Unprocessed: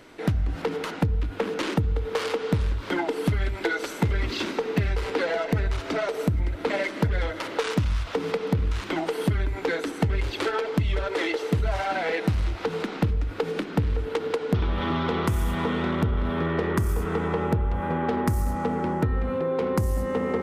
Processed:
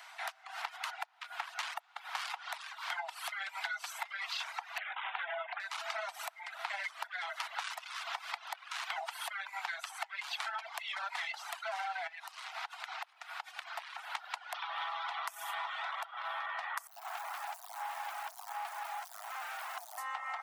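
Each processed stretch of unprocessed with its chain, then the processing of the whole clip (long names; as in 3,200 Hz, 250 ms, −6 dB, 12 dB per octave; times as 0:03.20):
0:04.78–0:05.60: linear-phase brick-wall low-pass 3,700 Hz + highs frequency-modulated by the lows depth 0.39 ms
0:12.07–0:13.78: high-pass filter 270 Hz 6 dB per octave + downward compressor 5 to 1, threshold −35 dBFS
0:16.87–0:19.98: low-pass filter 1,000 Hz + noise that follows the level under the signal 23 dB + gain into a clipping stage and back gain 32 dB
whole clip: reverb reduction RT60 0.71 s; Butterworth high-pass 680 Hz 96 dB per octave; downward compressor 6 to 1, threshold −38 dBFS; level +2 dB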